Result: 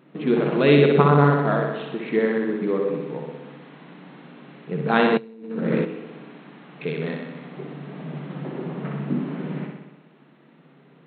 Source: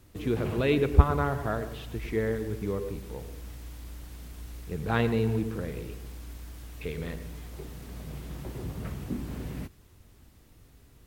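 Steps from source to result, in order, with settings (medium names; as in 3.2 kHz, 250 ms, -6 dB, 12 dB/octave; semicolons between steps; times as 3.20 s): local Wiener filter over 9 samples; vibrato 6.4 Hz 23 cents; flutter echo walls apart 10.7 m, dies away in 0.95 s; 5.17–5.85 s: compressor with a negative ratio -32 dBFS, ratio -0.5; FFT band-pass 130–4300 Hz; trim +8 dB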